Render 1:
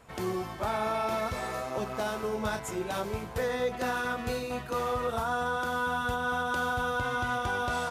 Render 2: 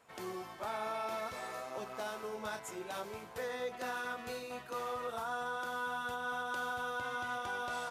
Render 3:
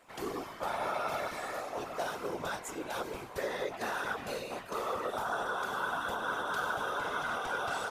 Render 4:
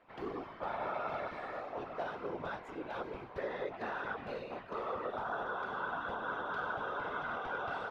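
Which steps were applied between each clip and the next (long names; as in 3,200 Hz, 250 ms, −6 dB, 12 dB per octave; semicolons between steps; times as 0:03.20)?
high-pass filter 410 Hz 6 dB per octave; level −7 dB
random phases in short frames; level +4 dB
high-frequency loss of the air 340 metres; level −2 dB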